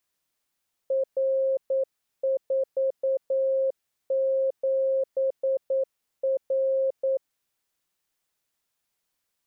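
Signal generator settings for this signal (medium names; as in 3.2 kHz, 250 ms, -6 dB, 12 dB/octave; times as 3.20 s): Morse "R47R" 9 wpm 534 Hz -21 dBFS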